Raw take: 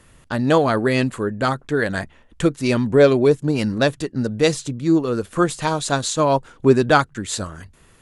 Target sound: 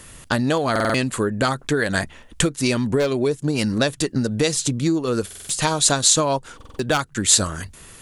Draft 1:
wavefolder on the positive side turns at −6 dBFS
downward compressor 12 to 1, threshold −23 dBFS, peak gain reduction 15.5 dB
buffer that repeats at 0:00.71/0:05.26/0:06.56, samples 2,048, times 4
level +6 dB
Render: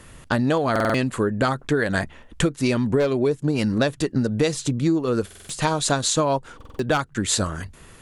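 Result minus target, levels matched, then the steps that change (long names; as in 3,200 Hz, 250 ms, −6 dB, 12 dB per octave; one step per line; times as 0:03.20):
8,000 Hz band −6.0 dB
add after downward compressor: high-shelf EQ 3,400 Hz +10 dB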